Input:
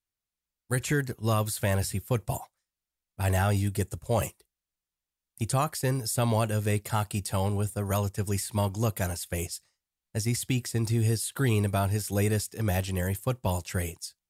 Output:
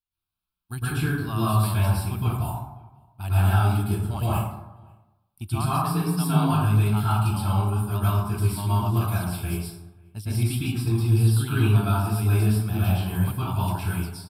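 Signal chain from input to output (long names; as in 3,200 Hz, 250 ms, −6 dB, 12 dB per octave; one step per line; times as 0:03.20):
phaser with its sweep stopped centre 1,900 Hz, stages 6
0:05.72–0:06.51: frequency shifter +37 Hz
slap from a distant wall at 92 metres, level −28 dB
dense smooth reverb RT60 0.96 s, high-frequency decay 0.45×, pre-delay 100 ms, DRR −10 dB
level −3.5 dB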